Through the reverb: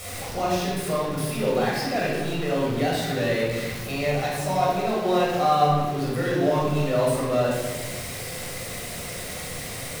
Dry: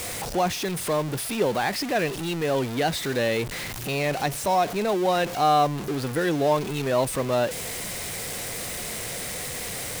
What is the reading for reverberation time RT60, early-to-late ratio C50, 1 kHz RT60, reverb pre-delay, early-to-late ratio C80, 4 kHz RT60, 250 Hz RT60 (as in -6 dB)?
1.2 s, -0.5 dB, 1.1 s, 11 ms, 2.5 dB, 0.95 s, 1.9 s